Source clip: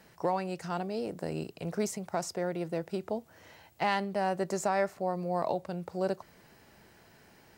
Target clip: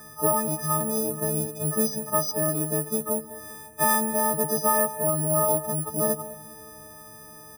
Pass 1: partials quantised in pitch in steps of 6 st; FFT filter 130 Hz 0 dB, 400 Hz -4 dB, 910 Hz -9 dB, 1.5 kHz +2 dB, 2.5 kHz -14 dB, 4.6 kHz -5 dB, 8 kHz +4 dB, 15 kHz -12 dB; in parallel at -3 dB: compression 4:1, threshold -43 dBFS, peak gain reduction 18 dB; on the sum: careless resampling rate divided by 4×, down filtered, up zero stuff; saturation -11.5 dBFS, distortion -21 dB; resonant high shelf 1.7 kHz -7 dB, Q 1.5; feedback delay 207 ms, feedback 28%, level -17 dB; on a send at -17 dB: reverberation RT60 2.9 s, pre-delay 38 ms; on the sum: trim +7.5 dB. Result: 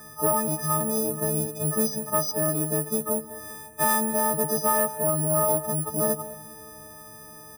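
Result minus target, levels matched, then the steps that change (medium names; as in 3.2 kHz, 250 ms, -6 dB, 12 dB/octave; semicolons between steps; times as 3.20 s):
saturation: distortion +19 dB; compression: peak gain reduction -7 dB
change: compression 4:1, threshold -52 dBFS, peak gain reduction 24.5 dB; change: saturation -1.5 dBFS, distortion -40 dB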